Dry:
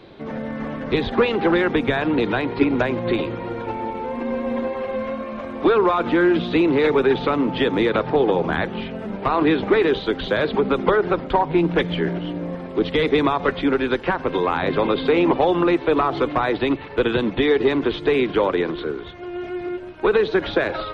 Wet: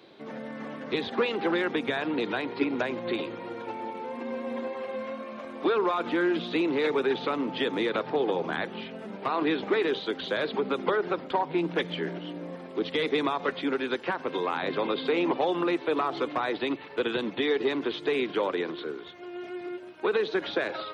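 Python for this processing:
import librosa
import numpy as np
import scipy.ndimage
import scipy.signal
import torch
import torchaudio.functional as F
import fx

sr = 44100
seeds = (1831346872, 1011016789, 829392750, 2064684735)

y = scipy.signal.sosfilt(scipy.signal.butter(2, 200.0, 'highpass', fs=sr, output='sos'), x)
y = fx.high_shelf(y, sr, hz=4200.0, db=9.5)
y = y * 10.0 ** (-8.5 / 20.0)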